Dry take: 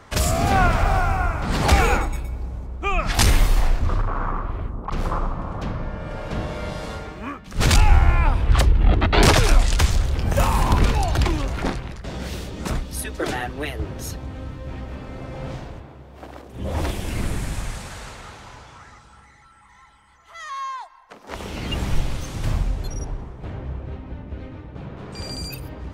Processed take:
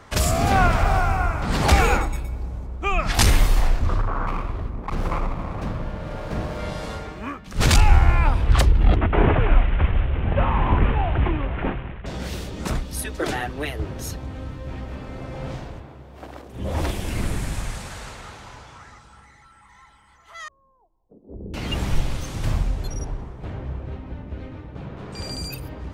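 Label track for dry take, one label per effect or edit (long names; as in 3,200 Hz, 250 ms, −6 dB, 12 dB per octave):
4.270000	6.590000	windowed peak hold over 9 samples
8.960000	12.060000	variable-slope delta modulation 16 kbit/s
20.480000	21.540000	inverse Chebyshev low-pass filter stop band from 2,500 Hz, stop band 80 dB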